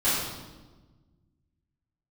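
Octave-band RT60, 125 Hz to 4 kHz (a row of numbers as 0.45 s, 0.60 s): 2.3 s, 1.9 s, 1.4 s, 1.2 s, 0.95 s, 1.0 s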